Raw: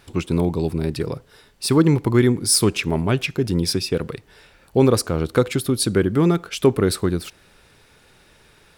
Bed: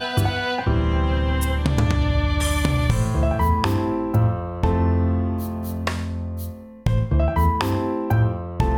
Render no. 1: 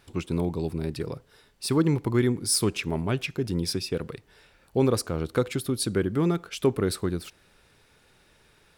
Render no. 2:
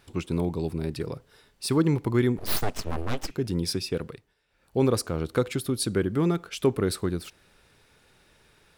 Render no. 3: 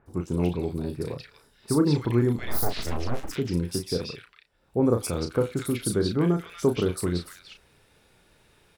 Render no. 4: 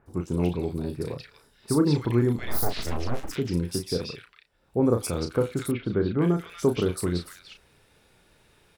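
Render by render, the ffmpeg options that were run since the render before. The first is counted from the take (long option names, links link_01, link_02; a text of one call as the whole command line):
ffmpeg -i in.wav -af "volume=-7dB" out.wav
ffmpeg -i in.wav -filter_complex "[0:a]asettb=1/sr,asplit=3[link_01][link_02][link_03];[link_01]atrim=end=2.384[link_04];[link_02]atrim=start=2.38:end=3.31,asetpts=PTS-STARTPTS,afade=type=in:duration=0.004:curve=qsin,afade=type=out:start_time=0.926:duration=0.004:curve=qsin,aeval=exprs='abs(val(0))':channel_layout=same[link_05];[link_03]atrim=start=3.306[link_06];[link_04][link_05]acrossfade=duration=0.004:curve1=hsin:curve2=qsin[link_07];[link_07][link_06]acrossfade=duration=0.004:curve1=qsin:curve2=hsin,asplit=3[link_08][link_09][link_10];[link_08]atrim=end=4.35,asetpts=PTS-STARTPTS,afade=type=out:start_time=3.99:duration=0.36:silence=0.125893[link_11];[link_09]atrim=start=4.35:end=4.47,asetpts=PTS-STARTPTS,volume=-18dB[link_12];[link_10]atrim=start=4.47,asetpts=PTS-STARTPTS,afade=type=in:duration=0.36:silence=0.125893[link_13];[link_11][link_12][link_13]concat=n=3:v=0:a=1" out.wav
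ffmpeg -i in.wav -filter_complex "[0:a]asplit=2[link_01][link_02];[link_02]adelay=34,volume=-7dB[link_03];[link_01][link_03]amix=inputs=2:normalize=0,acrossover=split=1600|5200[link_04][link_05][link_06];[link_06]adelay=60[link_07];[link_05]adelay=240[link_08];[link_04][link_08][link_07]amix=inputs=3:normalize=0" out.wav
ffmpeg -i in.wav -filter_complex "[0:a]asettb=1/sr,asplit=3[link_01][link_02][link_03];[link_01]atrim=end=5.714[link_04];[link_02]atrim=start=5.71:end=6.22,asetpts=PTS-STARTPTS,afade=type=in:duration=0.004:curve=qsin,afade=type=out:start_time=0.506:duration=0.004:curve=qsin,lowpass=frequency=2900:width=0.5412,lowpass=frequency=2900:width=1.3066[link_05];[link_03]atrim=start=6.216[link_06];[link_04][link_05]acrossfade=duration=0.004:curve1=hsin:curve2=qsin[link_07];[link_07][link_06]acrossfade=duration=0.004:curve1=qsin:curve2=hsin" out.wav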